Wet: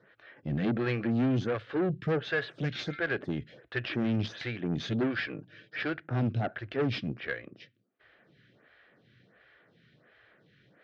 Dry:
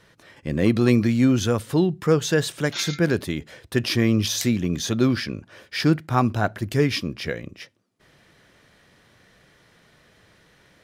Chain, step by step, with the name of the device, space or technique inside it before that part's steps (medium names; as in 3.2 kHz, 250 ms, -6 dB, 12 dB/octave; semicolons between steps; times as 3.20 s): 5.18–5.83 s: comb 6.5 ms, depth 55%; vibe pedal into a guitar amplifier (lamp-driven phase shifter 1.4 Hz; valve stage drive 24 dB, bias 0.6; cabinet simulation 75–3700 Hz, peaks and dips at 86 Hz -9 dB, 120 Hz +6 dB, 970 Hz -8 dB, 1.6 kHz +5 dB)